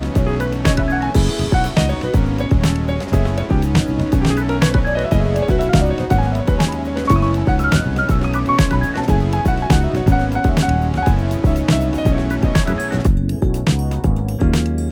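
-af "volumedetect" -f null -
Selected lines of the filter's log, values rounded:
mean_volume: -15.7 dB
max_volume: -1.3 dB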